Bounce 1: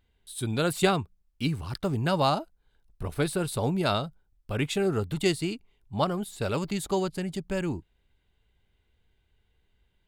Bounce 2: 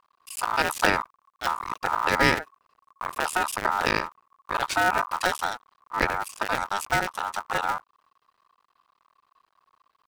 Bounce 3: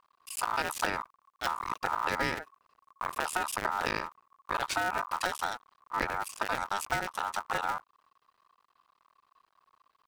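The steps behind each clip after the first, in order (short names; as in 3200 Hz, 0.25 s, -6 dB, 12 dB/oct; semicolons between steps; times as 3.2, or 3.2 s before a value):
cycle switcher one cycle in 2, muted; ring modulator 1100 Hz; gain +7.5 dB
compressor 6:1, threshold -24 dBFS, peak gain reduction 10 dB; gain -2 dB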